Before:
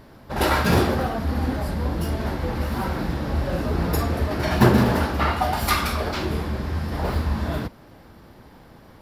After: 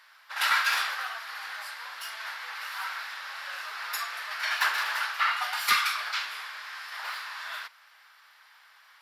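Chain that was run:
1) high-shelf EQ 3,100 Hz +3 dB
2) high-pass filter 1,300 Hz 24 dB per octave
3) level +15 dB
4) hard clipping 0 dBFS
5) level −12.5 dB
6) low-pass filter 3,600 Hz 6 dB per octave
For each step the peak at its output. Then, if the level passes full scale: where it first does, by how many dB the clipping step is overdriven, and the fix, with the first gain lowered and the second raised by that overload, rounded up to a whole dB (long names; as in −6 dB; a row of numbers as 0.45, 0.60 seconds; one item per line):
−2.0, −10.0, +5.0, 0.0, −12.5, −12.5 dBFS
step 3, 5.0 dB
step 3 +10 dB, step 5 −7.5 dB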